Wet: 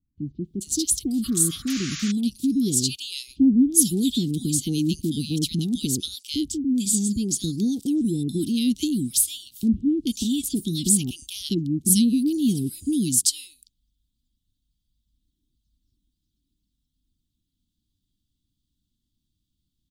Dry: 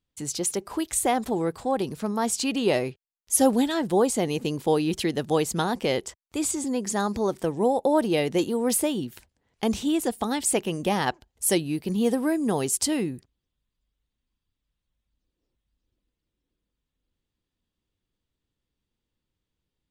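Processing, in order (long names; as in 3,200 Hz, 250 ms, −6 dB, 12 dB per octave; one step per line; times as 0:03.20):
elliptic band-stop filter 280–3,500 Hz, stop band 40 dB
sound drawn into the spectrogram noise, 0:01.23–0:01.68, 1,100–7,200 Hz −40 dBFS
multiband delay without the direct sound lows, highs 440 ms, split 1,100 Hz
level +6.5 dB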